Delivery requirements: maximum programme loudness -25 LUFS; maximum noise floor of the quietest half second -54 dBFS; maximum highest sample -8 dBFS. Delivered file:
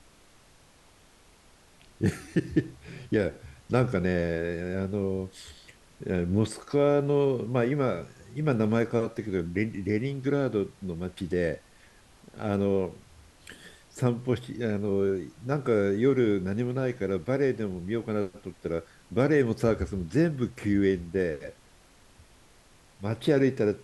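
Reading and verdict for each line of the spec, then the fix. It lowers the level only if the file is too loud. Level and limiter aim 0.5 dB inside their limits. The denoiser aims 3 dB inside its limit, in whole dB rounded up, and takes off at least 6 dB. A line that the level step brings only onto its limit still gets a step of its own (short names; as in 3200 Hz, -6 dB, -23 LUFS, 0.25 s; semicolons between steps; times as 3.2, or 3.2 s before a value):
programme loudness -28.0 LUFS: OK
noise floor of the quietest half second -58 dBFS: OK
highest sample -10.5 dBFS: OK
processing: none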